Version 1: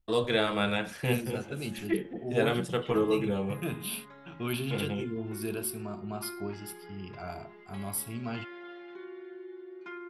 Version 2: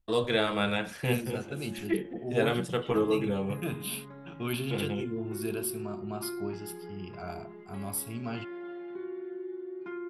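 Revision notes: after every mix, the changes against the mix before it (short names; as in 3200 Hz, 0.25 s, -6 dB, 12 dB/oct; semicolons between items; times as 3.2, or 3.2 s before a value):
background: add tilt -4 dB/oct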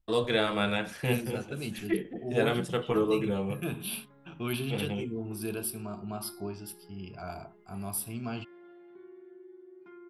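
background -12.0 dB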